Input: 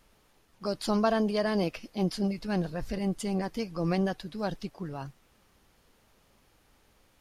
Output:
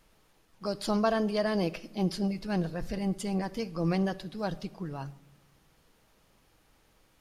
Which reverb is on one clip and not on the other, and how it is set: shoebox room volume 3600 m³, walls furnished, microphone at 0.61 m; gain -1 dB

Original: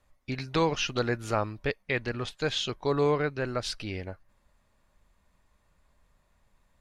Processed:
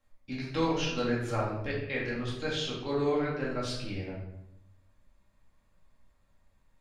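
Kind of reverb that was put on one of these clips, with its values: shoebox room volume 260 m³, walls mixed, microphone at 2.2 m; gain -10 dB

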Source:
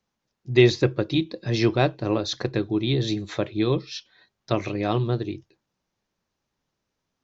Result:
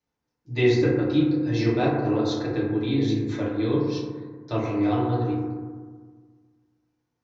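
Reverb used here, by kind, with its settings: FDN reverb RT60 1.6 s, low-frequency decay 1.2×, high-frequency decay 0.25×, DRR -7.5 dB; gain -10 dB

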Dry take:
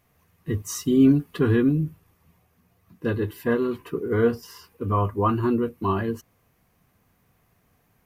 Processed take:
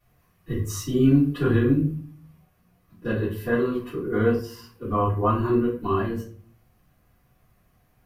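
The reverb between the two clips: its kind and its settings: shoebox room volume 32 m³, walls mixed, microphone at 2.4 m; gain -13 dB

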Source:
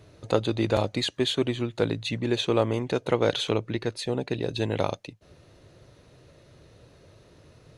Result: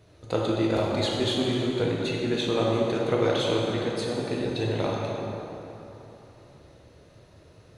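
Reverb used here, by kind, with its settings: plate-style reverb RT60 3.4 s, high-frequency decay 0.6×, DRR -3.5 dB; gain -4.5 dB

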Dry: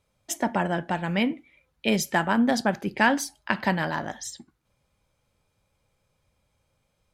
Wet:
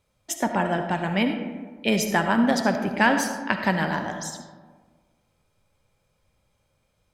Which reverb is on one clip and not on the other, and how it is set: digital reverb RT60 1.5 s, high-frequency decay 0.4×, pre-delay 30 ms, DRR 6 dB; gain +1 dB

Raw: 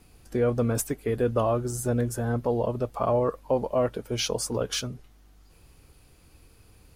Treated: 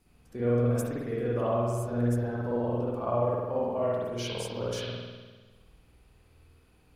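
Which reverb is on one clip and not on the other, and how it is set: spring tank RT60 1.4 s, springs 50 ms, chirp 25 ms, DRR -7.5 dB; gain -12 dB

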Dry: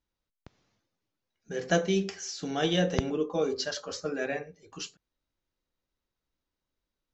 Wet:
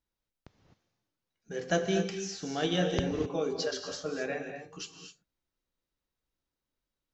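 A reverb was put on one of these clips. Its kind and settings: non-linear reverb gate 0.28 s rising, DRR 6 dB; gain -3 dB

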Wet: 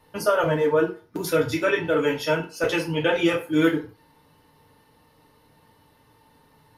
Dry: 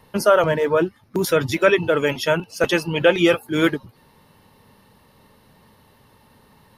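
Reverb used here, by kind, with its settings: FDN reverb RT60 0.36 s, low-frequency decay 0.8×, high-frequency decay 0.8×, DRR -2.5 dB; gain -8.5 dB

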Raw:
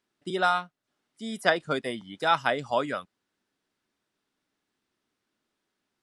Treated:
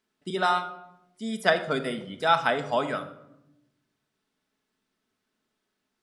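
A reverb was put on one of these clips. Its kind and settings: shoebox room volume 2700 m³, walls furnished, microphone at 1.5 m

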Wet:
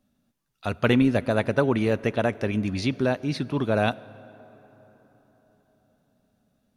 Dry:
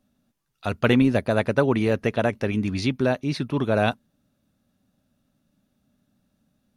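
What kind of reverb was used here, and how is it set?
plate-style reverb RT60 4.5 s, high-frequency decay 0.5×, DRR 19.5 dB; gain -1.5 dB

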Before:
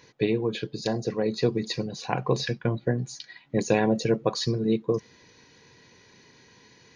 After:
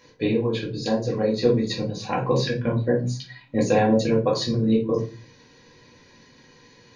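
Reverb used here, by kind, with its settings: shoebox room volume 160 m³, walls furnished, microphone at 2.2 m; gain -2.5 dB

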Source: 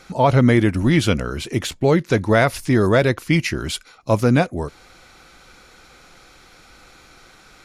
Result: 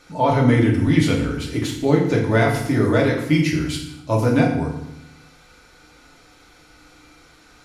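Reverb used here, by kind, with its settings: FDN reverb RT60 0.82 s, low-frequency decay 1.5×, high-frequency decay 0.85×, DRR -2 dB; gain -6.5 dB

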